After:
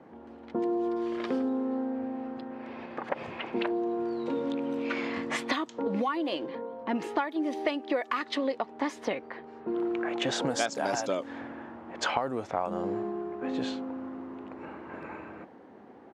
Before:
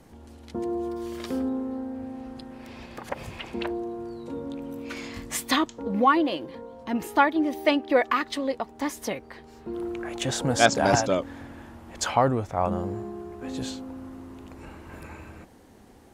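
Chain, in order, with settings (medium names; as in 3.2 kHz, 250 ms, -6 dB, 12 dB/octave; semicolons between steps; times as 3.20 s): level-controlled noise filter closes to 1.5 kHz, open at -18 dBFS; high-pass 240 Hz 12 dB/octave; compression 16:1, threshold -29 dBFS, peak gain reduction 18 dB; resampled via 32 kHz; 3.56–6.09 s: three bands compressed up and down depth 70%; trim +4 dB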